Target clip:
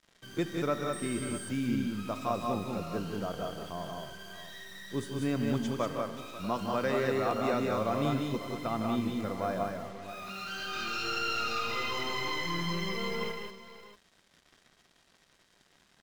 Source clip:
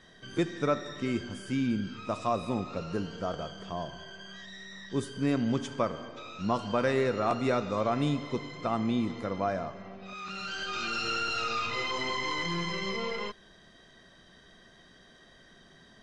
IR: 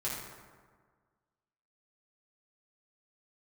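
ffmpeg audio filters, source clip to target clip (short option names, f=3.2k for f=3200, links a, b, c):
-filter_complex "[0:a]asettb=1/sr,asplit=3[a][b][c];[a]atrim=end=5.714[d];[b]atrim=start=5.71:end=7.54,asetpts=PTS-STARTPTS,afade=t=in:d=0.004:c=qsin,afade=t=out:st=1.826:d=0.004:c=qsin,acrossover=split=170|3000[e][f][g];[e]acompressor=threshold=-43dB:ratio=6[h];[h][f][g]amix=inputs=3:normalize=0[i];[c]atrim=start=7.536[j];[d][i]acrossfade=d=0.004:c1=hsin:c2=qsin[k];[k][j]acrossfade=d=0.004:c1=qsin:c2=hsin,acrusher=bits=7:mix=0:aa=0.5,aecho=1:1:159|189|540|641:0.376|0.668|0.141|0.2,asettb=1/sr,asplit=3[l][m][n];[l]atrim=end=0.934[o];[m]atrim=start=0.93:end=1.49,asetpts=PTS-STARTPTS,afade=t=in:d=0.004:c=qsin,afade=t=out:st=0.556:d=0.004:c=qsin,aeval=exprs='val(0)+0.0112*sin(2*PI*8500*n/s)':c=same[p];[n]atrim=start=1.486[q];[o][p]acrossfade=d=0.004:c1=hsin:c2=qsin[r];[r][q]acrossfade=d=0.004:c1=qsin:c2=hsin,volume=-3.5dB"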